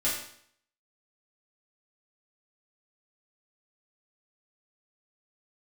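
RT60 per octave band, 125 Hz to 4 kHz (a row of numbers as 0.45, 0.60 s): 0.65, 0.65, 0.65, 0.65, 0.60, 0.60 s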